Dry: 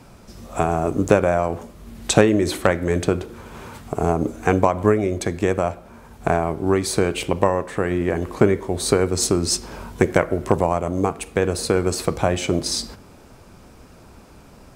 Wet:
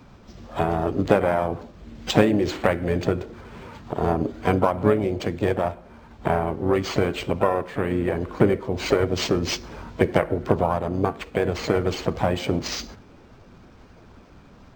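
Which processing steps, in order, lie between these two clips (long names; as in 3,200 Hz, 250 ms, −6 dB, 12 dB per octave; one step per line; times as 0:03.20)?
spectral magnitudes quantised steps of 15 dB
pitch-shifted copies added +5 semitones −9 dB
linearly interpolated sample-rate reduction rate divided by 4×
level −2.5 dB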